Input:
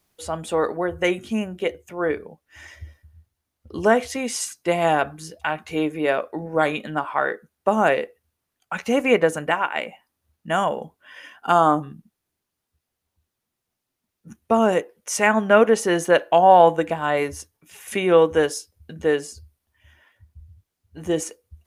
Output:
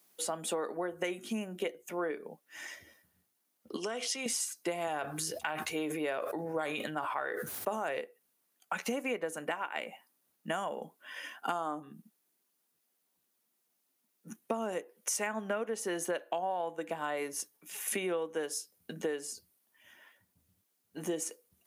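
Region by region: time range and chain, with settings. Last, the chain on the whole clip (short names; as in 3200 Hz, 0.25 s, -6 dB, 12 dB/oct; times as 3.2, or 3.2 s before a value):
3.76–4.26 compressor 4:1, threshold -26 dBFS + speaker cabinet 300–9900 Hz, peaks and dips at 310 Hz -7 dB, 580 Hz -8 dB, 880 Hz -7 dB, 1700 Hz -6 dB, 3100 Hz +7 dB, 5300 Hz +7 dB
4.87–8.01 resonant low shelf 140 Hz +10.5 dB, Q 3 + sustainer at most 31 dB/s
whole clip: high shelf 7900 Hz +10.5 dB; compressor 12:1, threshold -29 dBFS; HPF 190 Hz 24 dB/oct; gain -2 dB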